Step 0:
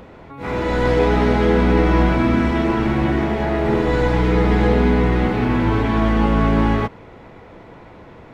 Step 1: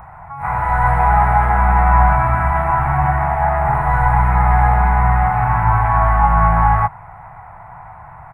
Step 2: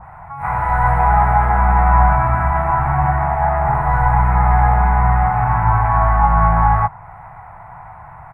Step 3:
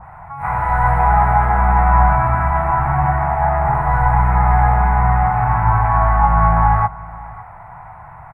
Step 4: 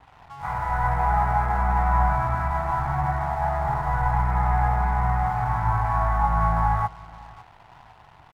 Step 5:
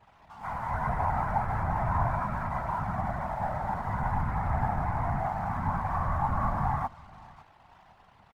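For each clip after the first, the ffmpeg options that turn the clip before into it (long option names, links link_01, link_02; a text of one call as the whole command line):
ffmpeg -i in.wav -af "firequalizer=gain_entry='entry(150,0);entry(230,-26);entry(490,-23);entry(740,8);entry(2100,-4);entry(3200,-25);entry(6000,-28);entry(8800,-1)':delay=0.05:min_phase=1,volume=4.5dB" out.wav
ffmpeg -i in.wav -af "adynamicequalizer=threshold=0.0316:dfrequency=1800:dqfactor=0.7:tfrequency=1800:tqfactor=0.7:attack=5:release=100:ratio=0.375:range=2.5:mode=cutabove:tftype=highshelf" out.wav
ffmpeg -i in.wav -af "aecho=1:1:559:0.0944" out.wav
ffmpeg -i in.wav -af "aeval=exprs='sgn(val(0))*max(abs(val(0))-0.00944,0)':channel_layout=same,volume=-8dB" out.wav
ffmpeg -i in.wav -af "afftfilt=real='hypot(re,im)*cos(2*PI*random(0))':imag='hypot(re,im)*sin(2*PI*random(1))':win_size=512:overlap=0.75,volume=-1dB" out.wav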